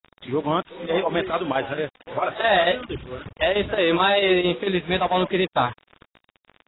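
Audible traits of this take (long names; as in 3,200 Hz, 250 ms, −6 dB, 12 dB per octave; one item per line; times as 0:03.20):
a quantiser's noise floor 6 bits, dither none
chopped level 4.5 Hz, depth 60%, duty 85%
AAC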